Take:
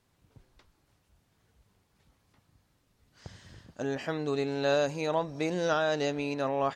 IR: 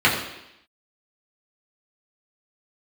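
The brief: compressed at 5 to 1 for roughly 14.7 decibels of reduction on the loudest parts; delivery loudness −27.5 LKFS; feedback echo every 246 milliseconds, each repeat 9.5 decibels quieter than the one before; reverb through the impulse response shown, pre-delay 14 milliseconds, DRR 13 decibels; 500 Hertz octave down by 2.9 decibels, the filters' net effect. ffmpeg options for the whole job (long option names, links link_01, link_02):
-filter_complex "[0:a]equalizer=frequency=500:width_type=o:gain=-3.5,acompressor=threshold=-42dB:ratio=5,aecho=1:1:246|492|738|984:0.335|0.111|0.0365|0.012,asplit=2[link_01][link_02];[1:a]atrim=start_sample=2205,adelay=14[link_03];[link_02][link_03]afir=irnorm=-1:irlink=0,volume=-34.5dB[link_04];[link_01][link_04]amix=inputs=2:normalize=0,volume=17dB"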